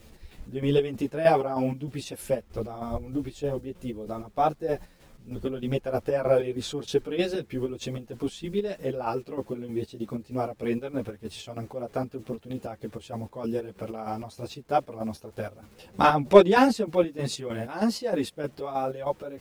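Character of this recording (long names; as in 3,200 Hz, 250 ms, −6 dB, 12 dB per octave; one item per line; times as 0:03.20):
a quantiser's noise floor 10 bits, dither none
chopped level 3.2 Hz, depth 60%, duty 50%
a shimmering, thickened sound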